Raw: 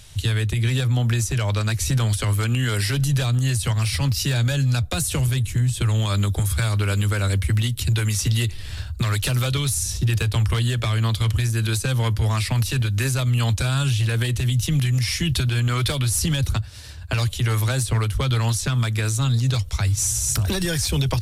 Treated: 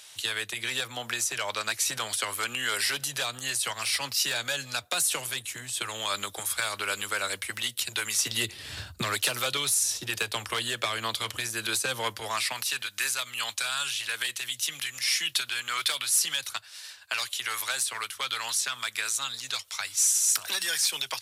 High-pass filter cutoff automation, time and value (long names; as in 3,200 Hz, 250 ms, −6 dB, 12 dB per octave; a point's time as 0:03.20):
0:08.15 690 Hz
0:08.80 170 Hz
0:09.26 520 Hz
0:12.09 520 Hz
0:12.86 1,200 Hz